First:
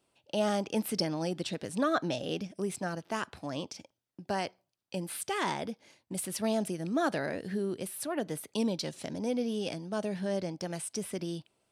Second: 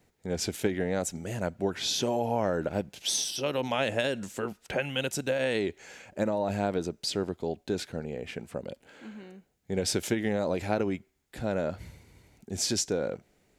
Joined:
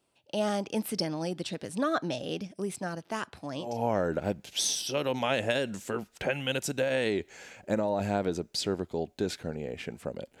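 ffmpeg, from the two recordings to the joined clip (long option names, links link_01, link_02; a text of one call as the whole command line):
ffmpeg -i cue0.wav -i cue1.wav -filter_complex "[0:a]apad=whole_dur=10.4,atrim=end=10.4,atrim=end=3.85,asetpts=PTS-STARTPTS[link_01];[1:a]atrim=start=2.06:end=8.89,asetpts=PTS-STARTPTS[link_02];[link_01][link_02]acrossfade=duration=0.28:curve1=tri:curve2=tri" out.wav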